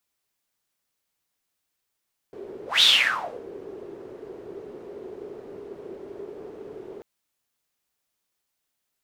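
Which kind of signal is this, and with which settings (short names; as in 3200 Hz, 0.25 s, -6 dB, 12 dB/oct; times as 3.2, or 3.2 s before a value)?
whoosh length 4.69 s, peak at 0.49, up 0.17 s, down 0.65 s, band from 400 Hz, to 3700 Hz, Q 7.9, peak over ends 23 dB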